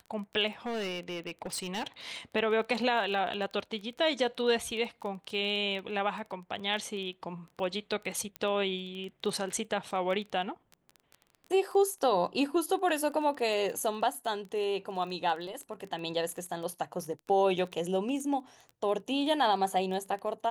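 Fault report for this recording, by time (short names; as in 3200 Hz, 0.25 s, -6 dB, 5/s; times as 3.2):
crackle 16/s -37 dBFS
0.66–1.87 clipped -31.5 dBFS
8.36 pop -21 dBFS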